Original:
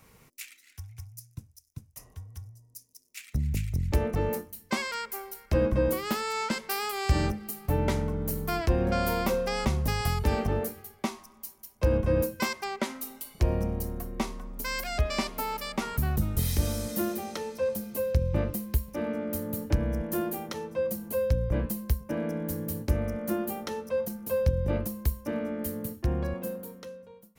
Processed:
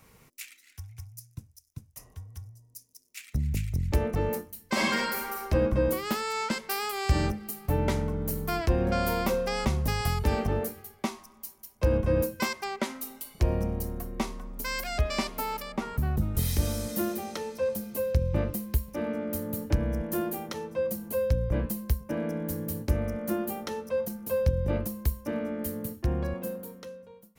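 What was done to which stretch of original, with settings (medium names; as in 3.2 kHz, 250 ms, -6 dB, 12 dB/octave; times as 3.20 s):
4.66–5.40 s: reverb throw, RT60 1.3 s, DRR -4.5 dB
15.62–16.35 s: treble shelf 2.1 kHz -9.5 dB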